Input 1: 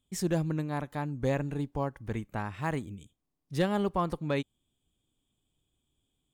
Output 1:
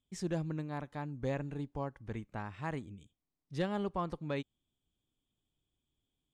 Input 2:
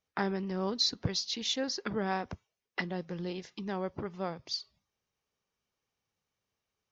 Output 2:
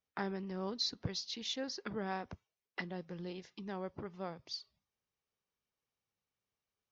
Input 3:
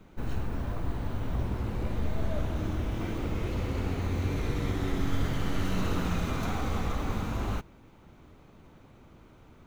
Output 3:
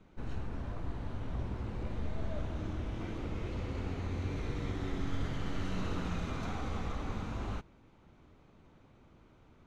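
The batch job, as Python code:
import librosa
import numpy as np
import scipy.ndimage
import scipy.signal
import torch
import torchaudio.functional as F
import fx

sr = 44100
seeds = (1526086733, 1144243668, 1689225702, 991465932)

y = scipy.signal.sosfilt(scipy.signal.butter(2, 6900.0, 'lowpass', fs=sr, output='sos'), x)
y = F.gain(torch.from_numpy(y), -6.5).numpy()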